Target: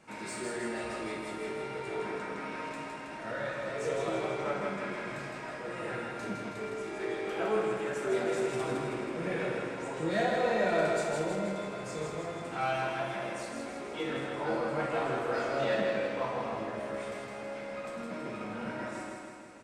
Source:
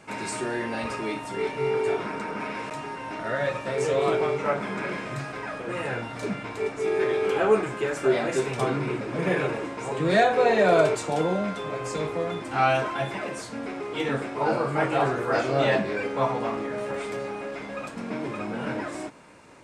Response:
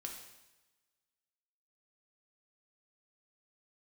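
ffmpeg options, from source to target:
-filter_complex "[0:a]asplit=2[s0][s1];[s1]asoftclip=type=tanh:threshold=0.0422,volume=0.596[s2];[s0][s2]amix=inputs=2:normalize=0,aecho=1:1:161|322|483|644|805|966|1127|1288:0.631|0.372|0.22|0.13|0.0765|0.0451|0.0266|0.0157[s3];[1:a]atrim=start_sample=2205,asetrate=61740,aresample=44100[s4];[s3][s4]afir=irnorm=-1:irlink=0,volume=0.531"

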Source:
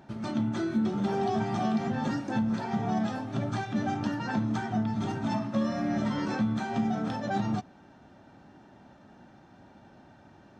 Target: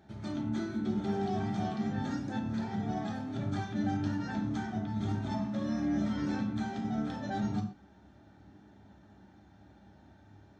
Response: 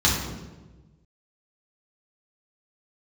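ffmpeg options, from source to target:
-filter_complex "[0:a]asplit=2[s0][s1];[1:a]atrim=start_sample=2205,atrim=end_sample=6174[s2];[s1][s2]afir=irnorm=-1:irlink=0,volume=0.133[s3];[s0][s3]amix=inputs=2:normalize=0,volume=0.376"

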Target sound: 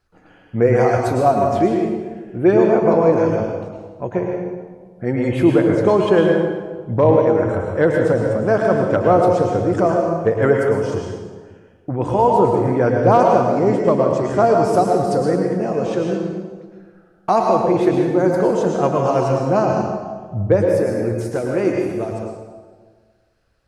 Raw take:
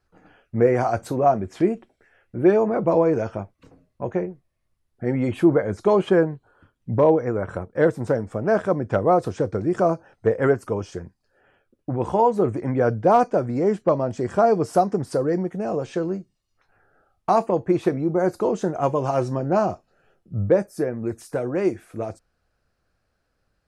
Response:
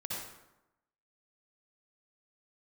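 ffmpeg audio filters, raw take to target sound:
-filter_complex "[0:a]asplit=2[s0][s1];[s1]equalizer=f=3600:w=0.66:g=5.5[s2];[1:a]atrim=start_sample=2205,asetrate=25137,aresample=44100[s3];[s2][s3]afir=irnorm=-1:irlink=0,volume=0.708[s4];[s0][s4]amix=inputs=2:normalize=0,volume=0.841"

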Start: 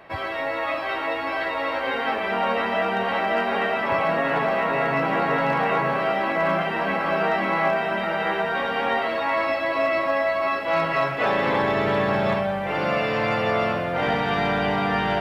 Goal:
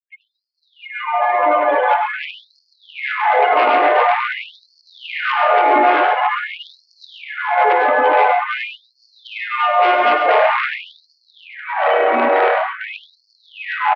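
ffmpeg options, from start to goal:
-filter_complex "[0:a]asetrate=48069,aresample=44100,afftfilt=real='re*gte(hypot(re,im),0.141)':imag='im*gte(hypot(re,im),0.141)':win_size=1024:overlap=0.75,acrossover=split=1300[s0][s1];[s0]aeval=exprs='0.237*sin(PI/2*2.82*val(0)/0.237)':c=same[s2];[s2][s1]amix=inputs=2:normalize=0,aecho=1:1:49|55|101|135|169|792:0.158|0.224|0.355|0.376|0.2|0.237,afftfilt=real='re*gte(b*sr/1024,250*pow(4300/250,0.5+0.5*sin(2*PI*0.47*pts/sr)))':imag='im*gte(b*sr/1024,250*pow(4300/250,0.5+0.5*sin(2*PI*0.47*pts/sr)))':win_size=1024:overlap=0.75,volume=1.26"

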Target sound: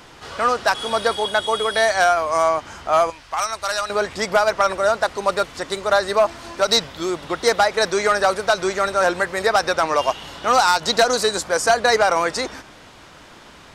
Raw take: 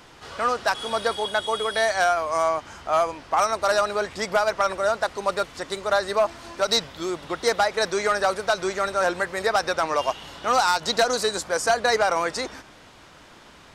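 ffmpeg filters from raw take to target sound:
-filter_complex "[0:a]asettb=1/sr,asplit=3[s0][s1][s2];[s0]atrim=end=3.104[s3];[s1]atrim=start=3.1:end=3.9,asetpts=PTS-STARTPTS,afade=t=in:d=0.004:c=qsin,afade=t=out:st=0.796:d=0.004:c=qsin,equalizer=f=320:w=0.37:g=-14.5[s4];[s2]atrim=start=3.896[s5];[s3][s4]acrossfade=d=0.004:c1=hsin:c2=qsin[s6];[s6][s5]acrossfade=d=0.004:c1=qsin:c2=hsin,volume=1.68"

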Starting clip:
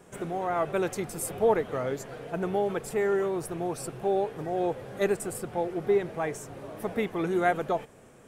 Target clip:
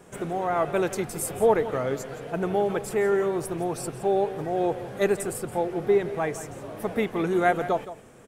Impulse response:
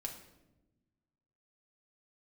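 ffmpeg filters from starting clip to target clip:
-af "aecho=1:1:169:0.2,volume=1.41"

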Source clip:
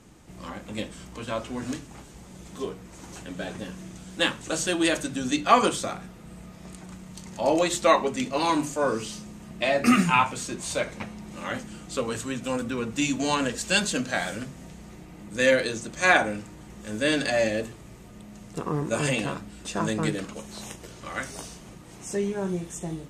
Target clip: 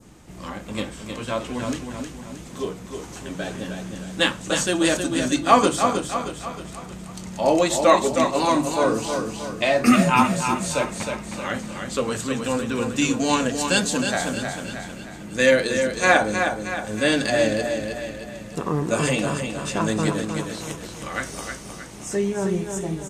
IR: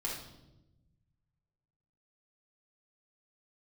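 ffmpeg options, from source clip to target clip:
-af "aecho=1:1:313|626|939|1252|1565:0.501|0.226|0.101|0.0457|0.0206,adynamicequalizer=threshold=0.0141:dfrequency=2400:dqfactor=0.86:tfrequency=2400:tqfactor=0.86:attack=5:release=100:ratio=0.375:range=3:mode=cutabove:tftype=bell,volume=1.58"

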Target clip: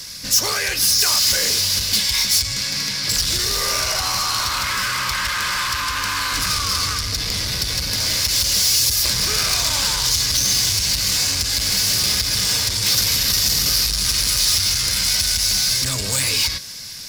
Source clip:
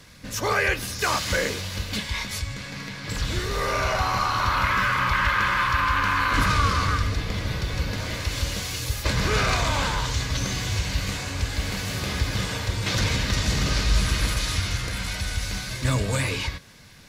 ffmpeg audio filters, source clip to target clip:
-filter_complex "[0:a]equalizer=f=5100:t=o:w=0.53:g=10.5,acompressor=threshold=0.0708:ratio=4,asoftclip=type=tanh:threshold=0.0531,crystalizer=i=5:c=0,asettb=1/sr,asplit=3[s0][s1][s2];[s0]atrim=end=12.944[s3];[s1]atrim=start=12.94:end=13.89,asetpts=PTS-STARTPTS,afade=t=in:d=0.004:c=qsin,afade=t=out:st=0.946:d=0.004:c=qsin,aeval=exprs='val(0)+0.0355*sin(2*PI*12000*n/s)':c=same[s4];[s2]atrim=start=13.886[s5];[s3][s4]acrossfade=d=0.004:c1=hsin:c2=qsin[s6];[s6][s5]acrossfade=d=0.004:c1=qsin:c2=hsin,volume=1.33"

